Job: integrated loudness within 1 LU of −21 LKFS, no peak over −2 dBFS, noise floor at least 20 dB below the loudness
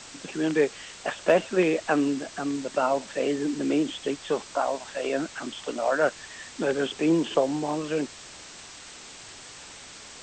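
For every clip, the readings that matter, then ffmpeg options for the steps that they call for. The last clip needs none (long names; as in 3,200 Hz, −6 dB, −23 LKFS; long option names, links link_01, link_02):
background noise floor −45 dBFS; target noise floor −47 dBFS; integrated loudness −27.0 LKFS; sample peak −9.5 dBFS; target loudness −21.0 LKFS
→ -af "afftdn=noise_reduction=6:noise_floor=-45"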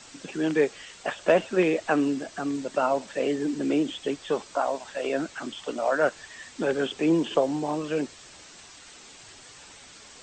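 background noise floor −49 dBFS; integrated loudness −27.0 LKFS; sample peak −10.0 dBFS; target loudness −21.0 LKFS
→ -af "volume=6dB"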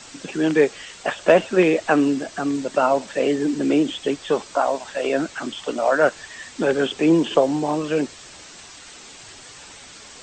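integrated loudness −21.0 LKFS; sample peak −4.0 dBFS; background noise floor −43 dBFS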